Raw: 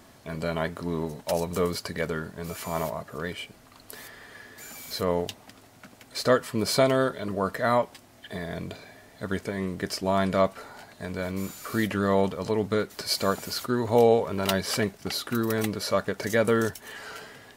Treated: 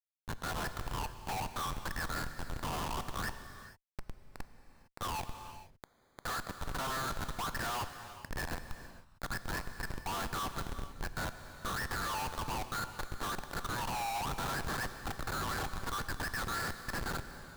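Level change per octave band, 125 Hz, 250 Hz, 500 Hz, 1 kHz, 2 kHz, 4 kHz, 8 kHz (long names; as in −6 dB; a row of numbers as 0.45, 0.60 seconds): −9.5, −16.0, −20.5, −6.0, −5.0, −8.5, −6.5 decibels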